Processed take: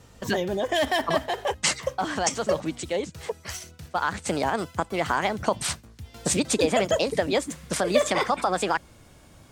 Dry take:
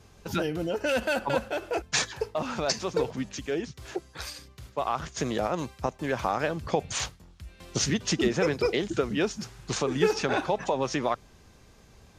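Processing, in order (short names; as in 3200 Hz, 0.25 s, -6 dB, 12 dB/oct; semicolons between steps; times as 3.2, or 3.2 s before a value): speed glide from 116% -> 140%; gain +3 dB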